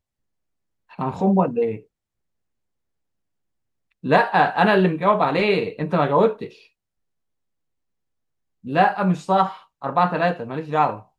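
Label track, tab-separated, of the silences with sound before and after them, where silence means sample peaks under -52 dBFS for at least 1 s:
1.850000	3.920000	silence
6.680000	8.640000	silence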